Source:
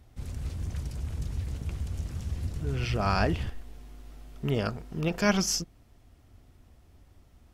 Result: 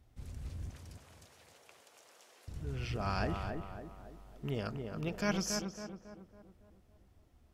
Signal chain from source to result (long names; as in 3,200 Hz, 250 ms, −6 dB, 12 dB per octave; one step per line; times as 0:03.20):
0:00.71–0:02.48: high-pass filter 500 Hz 24 dB per octave
on a send: tape delay 277 ms, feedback 54%, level −3.5 dB, low-pass 1,500 Hz
on the sum: level −9 dB